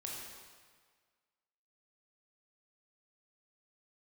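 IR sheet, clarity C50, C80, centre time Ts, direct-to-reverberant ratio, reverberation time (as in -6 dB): -0.5 dB, 1.5 dB, 94 ms, -3.0 dB, 1.6 s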